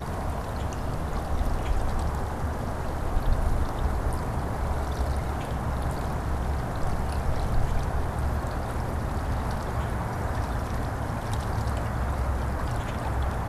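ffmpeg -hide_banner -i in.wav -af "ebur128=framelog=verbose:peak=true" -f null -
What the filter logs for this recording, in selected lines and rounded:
Integrated loudness:
  I:         -30.1 LUFS
  Threshold: -40.1 LUFS
Loudness range:
  LRA:         0.5 LU
  Threshold: -50.0 LUFS
  LRA low:   -30.3 LUFS
  LRA high:  -29.8 LUFS
True peak:
  Peak:      -11.4 dBFS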